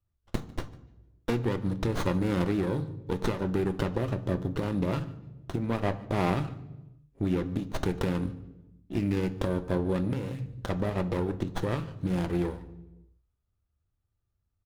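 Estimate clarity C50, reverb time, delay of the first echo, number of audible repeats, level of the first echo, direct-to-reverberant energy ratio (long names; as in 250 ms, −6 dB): 15.5 dB, 1.0 s, 148 ms, 1, −22.5 dB, 10.5 dB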